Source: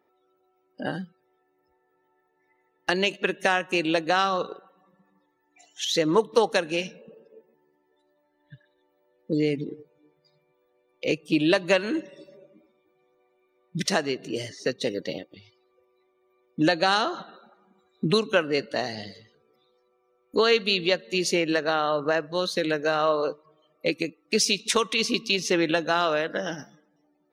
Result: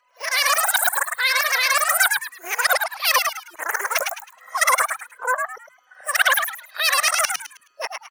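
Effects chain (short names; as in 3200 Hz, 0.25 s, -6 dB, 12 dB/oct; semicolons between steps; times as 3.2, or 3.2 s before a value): whole clip reversed; wide varispeed 3.37×; frequency-shifting echo 0.106 s, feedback 30%, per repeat +130 Hz, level -4.5 dB; gain +4 dB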